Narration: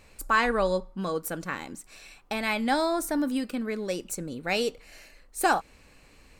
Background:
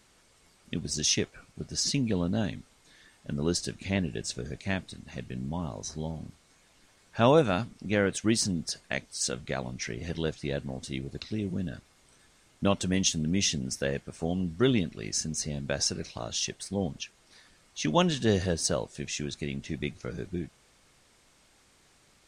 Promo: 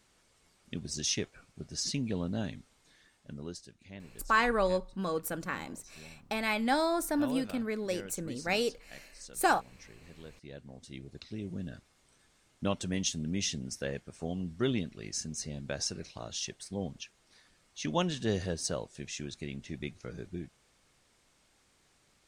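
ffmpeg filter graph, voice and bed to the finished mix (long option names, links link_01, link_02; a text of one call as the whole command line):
ffmpeg -i stem1.wav -i stem2.wav -filter_complex "[0:a]adelay=4000,volume=-3dB[link_01];[1:a]volume=7.5dB,afade=type=out:start_time=2.88:duration=0.77:silence=0.211349,afade=type=in:start_time=10.31:duration=1.36:silence=0.223872[link_02];[link_01][link_02]amix=inputs=2:normalize=0" out.wav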